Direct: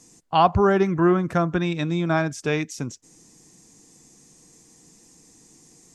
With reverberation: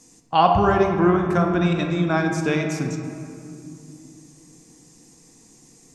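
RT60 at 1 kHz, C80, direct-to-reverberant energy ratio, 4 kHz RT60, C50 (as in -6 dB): 2.6 s, 6.0 dB, 2.5 dB, 1.4 s, 4.5 dB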